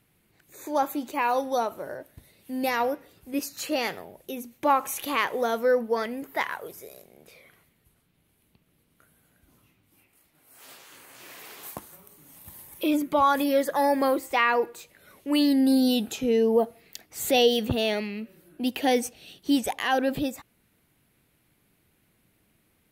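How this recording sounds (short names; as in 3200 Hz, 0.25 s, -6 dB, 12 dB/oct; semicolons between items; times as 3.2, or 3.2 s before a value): noise floor -68 dBFS; spectral tilt -3.5 dB/oct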